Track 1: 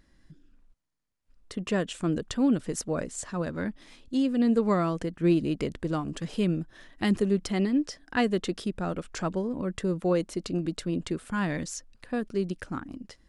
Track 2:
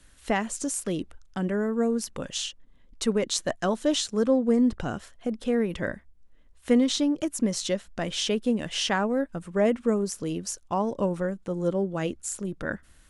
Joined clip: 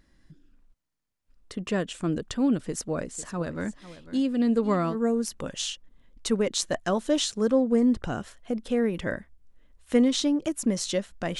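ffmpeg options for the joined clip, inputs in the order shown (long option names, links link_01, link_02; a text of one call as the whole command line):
ffmpeg -i cue0.wav -i cue1.wav -filter_complex "[0:a]asplit=3[link_01][link_02][link_03];[link_01]afade=type=out:start_time=3.17:duration=0.02[link_04];[link_02]aecho=1:1:499:0.168,afade=type=in:start_time=3.17:duration=0.02,afade=type=out:start_time=4.97:duration=0.02[link_05];[link_03]afade=type=in:start_time=4.97:duration=0.02[link_06];[link_04][link_05][link_06]amix=inputs=3:normalize=0,apad=whole_dur=11.39,atrim=end=11.39,atrim=end=4.97,asetpts=PTS-STARTPTS[link_07];[1:a]atrim=start=1.65:end=8.15,asetpts=PTS-STARTPTS[link_08];[link_07][link_08]acrossfade=duration=0.08:curve1=tri:curve2=tri" out.wav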